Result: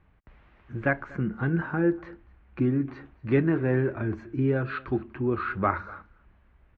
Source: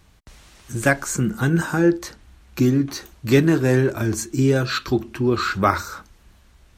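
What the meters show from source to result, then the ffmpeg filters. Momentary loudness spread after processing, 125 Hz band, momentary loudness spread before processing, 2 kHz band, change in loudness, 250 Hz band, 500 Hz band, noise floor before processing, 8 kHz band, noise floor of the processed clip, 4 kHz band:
11 LU, −7.0 dB, 13 LU, −7.5 dB, −7.0 dB, −7.0 dB, −7.0 dB, −54 dBFS, below −40 dB, −61 dBFS, below −20 dB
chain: -af "lowpass=frequency=2300:width=0.5412,lowpass=frequency=2300:width=1.3066,aecho=1:1:241:0.0668,volume=-7dB"

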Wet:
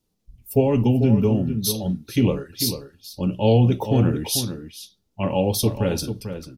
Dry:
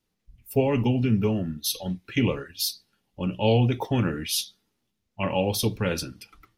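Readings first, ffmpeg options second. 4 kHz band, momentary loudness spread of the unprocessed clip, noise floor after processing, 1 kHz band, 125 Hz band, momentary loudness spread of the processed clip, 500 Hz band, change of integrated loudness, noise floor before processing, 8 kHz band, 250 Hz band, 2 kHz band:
+1.5 dB, 9 LU, −72 dBFS, +2.0 dB, +5.5 dB, 13 LU, +4.5 dB, +4.5 dB, −78 dBFS, +4.0 dB, +5.0 dB, −4.0 dB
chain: -filter_complex "[0:a]equalizer=frequency=1900:width=0.84:gain=-11,asplit=2[link_01][link_02];[link_02]adelay=443.1,volume=-9dB,highshelf=frequency=4000:gain=-9.97[link_03];[link_01][link_03]amix=inputs=2:normalize=0,volume=5dB"

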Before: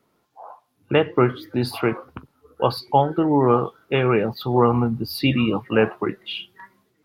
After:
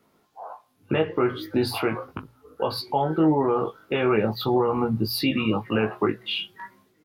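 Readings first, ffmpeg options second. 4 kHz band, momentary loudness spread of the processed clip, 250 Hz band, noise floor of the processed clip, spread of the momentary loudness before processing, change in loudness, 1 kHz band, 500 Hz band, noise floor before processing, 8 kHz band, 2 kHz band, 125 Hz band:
+0.5 dB, 19 LU, −2.5 dB, −65 dBFS, 9 LU, −3.5 dB, −4.5 dB, −3.5 dB, −68 dBFS, can't be measured, −3.0 dB, −5.5 dB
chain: -filter_complex "[0:a]alimiter=limit=-15dB:level=0:latency=1:release=157,bandreject=frequency=60:width_type=h:width=6,bandreject=frequency=120:width_type=h:width=6,asplit=2[link_01][link_02];[link_02]adelay=19,volume=-4dB[link_03];[link_01][link_03]amix=inputs=2:normalize=0,volume=1.5dB"

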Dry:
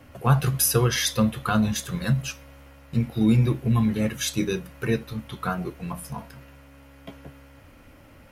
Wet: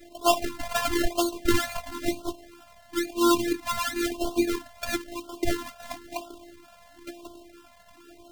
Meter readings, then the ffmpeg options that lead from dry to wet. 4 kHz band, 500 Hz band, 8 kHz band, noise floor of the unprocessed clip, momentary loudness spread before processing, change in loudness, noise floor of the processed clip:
−1.0 dB, +1.5 dB, −5.5 dB, −50 dBFS, 15 LU, −3.5 dB, −54 dBFS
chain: -af "highpass=frequency=200:width=0.5412,highpass=frequency=200:width=1.3066,equalizer=frequency=240:width_type=q:width=4:gain=4,equalizer=frequency=380:width_type=q:width=4:gain=-9,equalizer=frequency=970:width_type=q:width=4:gain=-4,equalizer=frequency=1500:width_type=q:width=4:gain=6,equalizer=frequency=4700:width_type=q:width=4:gain=-7,lowpass=frequency=5700:width=0.5412,lowpass=frequency=5700:width=1.3066,acrusher=samples=29:mix=1:aa=0.000001:lfo=1:lforange=17.4:lforate=2.2,afftfilt=real='hypot(re,im)*cos(PI*b)':imag='0':win_size=512:overlap=0.75,afftfilt=real='re*(1-between(b*sr/1024,310*pow(2000/310,0.5+0.5*sin(2*PI*0.99*pts/sr))/1.41,310*pow(2000/310,0.5+0.5*sin(2*PI*0.99*pts/sr))*1.41))':imag='im*(1-between(b*sr/1024,310*pow(2000/310,0.5+0.5*sin(2*PI*0.99*pts/sr))/1.41,310*pow(2000/310,0.5+0.5*sin(2*PI*0.99*pts/sr))*1.41))':win_size=1024:overlap=0.75,volume=7dB"

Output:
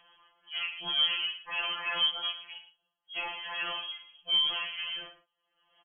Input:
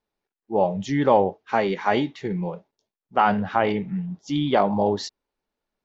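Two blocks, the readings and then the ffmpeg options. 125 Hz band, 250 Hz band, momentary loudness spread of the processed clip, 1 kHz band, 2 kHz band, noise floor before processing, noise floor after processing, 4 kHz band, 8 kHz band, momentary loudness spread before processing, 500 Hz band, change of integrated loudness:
below −30 dB, −33.5 dB, 15 LU, −18.5 dB, −3.0 dB, below −85 dBFS, −83 dBFS, +11.0 dB, can't be measured, 10 LU, −27.5 dB, −7.0 dB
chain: -filter_complex "[0:a]equalizer=frequency=160:width_type=o:width=0.67:gain=10,equalizer=frequency=1000:width_type=o:width=0.67:gain=-11,equalizer=frequency=2500:width_type=o:width=0.67:gain=11,acompressor=mode=upward:threshold=-39dB:ratio=2.5,alimiter=limit=-11dB:level=0:latency=1,crystalizer=i=1:c=0,aresample=16000,asoftclip=type=tanh:threshold=-26.5dB,aresample=44100,asplit=2[link_01][link_02];[link_02]adelay=41,volume=-7dB[link_03];[link_01][link_03]amix=inputs=2:normalize=0,aecho=1:1:114:0.224,lowpass=frequency=2900:width_type=q:width=0.5098,lowpass=frequency=2900:width_type=q:width=0.6013,lowpass=frequency=2900:width_type=q:width=0.9,lowpass=frequency=2900:width_type=q:width=2.563,afreqshift=-3400,afftfilt=real='re*2.83*eq(mod(b,8),0)':imag='im*2.83*eq(mod(b,8),0)':win_size=2048:overlap=0.75"

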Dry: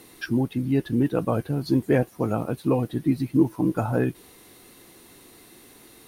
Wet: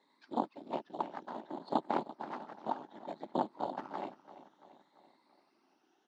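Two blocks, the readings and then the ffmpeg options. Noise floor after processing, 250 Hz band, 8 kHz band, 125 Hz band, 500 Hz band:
−74 dBFS, −19.5 dB, can't be measured, −30.0 dB, −14.5 dB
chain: -filter_complex "[0:a]afftfilt=real='re*pow(10,15/40*sin(2*PI*(1*log(max(b,1)*sr/1024/100)/log(2)-(0.61)*(pts-256)/sr)))':imag='im*pow(10,15/40*sin(2*PI*(1*log(max(b,1)*sr/1024/100)/log(2)-(0.61)*(pts-256)/sr)))':win_size=1024:overlap=0.75,acrossover=split=370|3000[link_01][link_02][link_03];[link_02]acompressor=threshold=-27dB:ratio=5[link_04];[link_01][link_04][link_03]amix=inputs=3:normalize=0,asplit=2[link_05][link_06];[link_06]acrusher=samples=12:mix=1:aa=0.000001,volume=-10dB[link_07];[link_05][link_07]amix=inputs=2:normalize=0,afftfilt=real='hypot(re,im)*cos(2*PI*random(0))':imag='hypot(re,im)*sin(2*PI*random(1))':win_size=512:overlap=0.75,aeval=exprs='0.355*(cos(1*acos(clip(val(0)/0.355,-1,1)))-cos(1*PI/2))+0.141*(cos(3*acos(clip(val(0)/0.355,-1,1)))-cos(3*PI/2))+0.0794*(cos(4*acos(clip(val(0)/0.355,-1,1)))-cos(4*PI/2))':channel_layout=same,highpass=frequency=230:width=0.5412,highpass=frequency=230:width=1.3066,equalizer=frequency=470:width_type=q:width=4:gain=-10,equalizer=frequency=890:width_type=q:width=4:gain=9,equalizer=frequency=2500:width_type=q:width=4:gain=-5,lowpass=frequency=5300:width=0.5412,lowpass=frequency=5300:width=1.3066,asplit=2[link_08][link_09];[link_09]aecho=0:1:339|678|1017|1356|1695:0.15|0.0823|0.0453|0.0249|0.0137[link_10];[link_08][link_10]amix=inputs=2:normalize=0,volume=-4dB"

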